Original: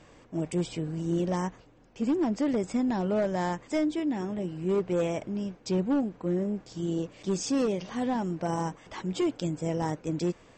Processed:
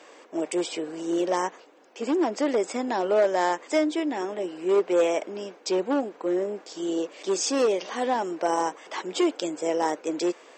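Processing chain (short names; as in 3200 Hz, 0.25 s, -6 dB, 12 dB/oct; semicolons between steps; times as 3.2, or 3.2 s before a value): HPF 350 Hz 24 dB/oct; gain +7.5 dB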